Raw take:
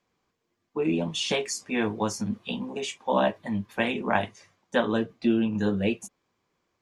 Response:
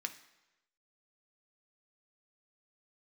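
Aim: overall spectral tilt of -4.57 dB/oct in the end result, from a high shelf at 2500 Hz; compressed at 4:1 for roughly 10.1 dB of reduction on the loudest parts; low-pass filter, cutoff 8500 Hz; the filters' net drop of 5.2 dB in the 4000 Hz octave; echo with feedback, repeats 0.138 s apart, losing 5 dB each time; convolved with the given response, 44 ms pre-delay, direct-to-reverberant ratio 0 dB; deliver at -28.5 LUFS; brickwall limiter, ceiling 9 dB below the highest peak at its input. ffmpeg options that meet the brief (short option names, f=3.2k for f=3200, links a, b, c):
-filter_complex "[0:a]lowpass=8.5k,highshelf=f=2.5k:g=-4,equalizer=f=4k:t=o:g=-3.5,acompressor=threshold=-31dB:ratio=4,alimiter=level_in=2dB:limit=-24dB:level=0:latency=1,volume=-2dB,aecho=1:1:138|276|414|552|690|828|966:0.562|0.315|0.176|0.0988|0.0553|0.031|0.0173,asplit=2[a][b];[1:a]atrim=start_sample=2205,adelay=44[c];[b][c]afir=irnorm=-1:irlink=0,volume=0dB[d];[a][d]amix=inputs=2:normalize=0,volume=5dB"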